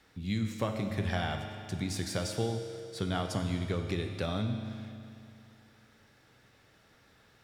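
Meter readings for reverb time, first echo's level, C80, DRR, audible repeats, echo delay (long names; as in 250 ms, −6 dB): 2.6 s, no echo audible, 6.5 dB, 4.5 dB, no echo audible, no echo audible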